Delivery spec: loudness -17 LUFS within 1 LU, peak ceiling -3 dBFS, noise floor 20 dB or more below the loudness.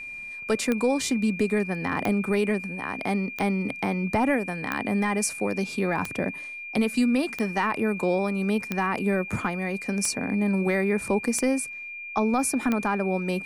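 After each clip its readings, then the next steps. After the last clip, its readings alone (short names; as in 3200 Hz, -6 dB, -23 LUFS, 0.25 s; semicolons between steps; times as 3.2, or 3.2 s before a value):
clicks 10; steady tone 2400 Hz; tone level -35 dBFS; loudness -26.0 LUFS; peak -10.0 dBFS; loudness target -17.0 LUFS
-> de-click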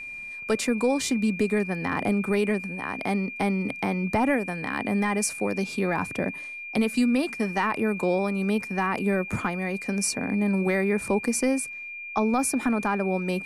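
clicks 0; steady tone 2400 Hz; tone level -35 dBFS
-> notch 2400 Hz, Q 30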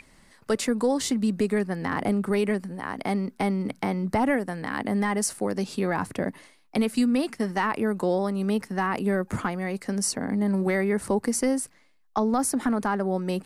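steady tone none; loudness -26.5 LUFS; peak -14.0 dBFS; loudness target -17.0 LUFS
-> gain +9.5 dB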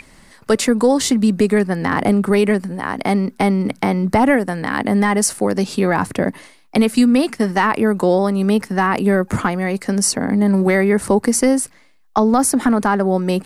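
loudness -17.0 LUFS; peak -4.5 dBFS; noise floor -50 dBFS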